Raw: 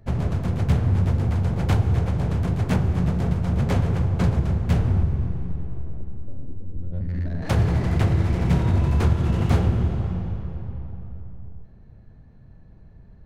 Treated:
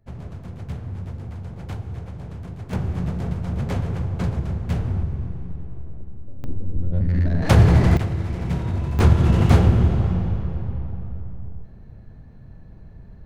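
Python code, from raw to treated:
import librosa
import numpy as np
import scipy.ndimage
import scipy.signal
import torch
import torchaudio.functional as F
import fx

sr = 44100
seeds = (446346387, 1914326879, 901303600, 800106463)

y = fx.gain(x, sr, db=fx.steps((0.0, -11.5), (2.73, -3.5), (6.44, 7.0), (7.97, -4.5), (8.99, 5.0)))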